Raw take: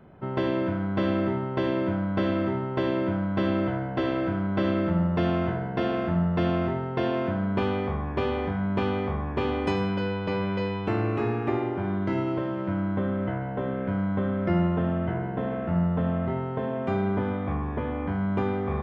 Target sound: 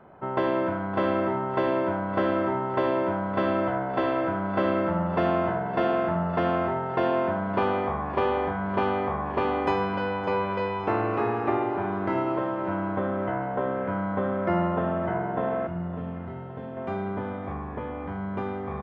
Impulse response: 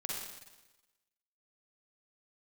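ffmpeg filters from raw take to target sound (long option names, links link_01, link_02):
-af "asetnsamples=nb_out_samples=441:pad=0,asendcmd='15.67 equalizer g -2.5;16.77 equalizer g 6',equalizer=frequency=920:width_type=o:width=2.7:gain=14.5,aecho=1:1:562|1124|1686|2248|2810:0.178|0.0996|0.0558|0.0312|0.0175,volume=-7.5dB"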